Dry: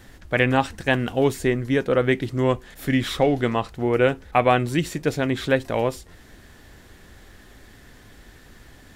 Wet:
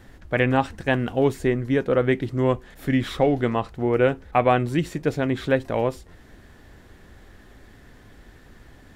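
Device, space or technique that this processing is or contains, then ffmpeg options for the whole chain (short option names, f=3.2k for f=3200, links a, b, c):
behind a face mask: -af "highshelf=f=2.5k:g=-8"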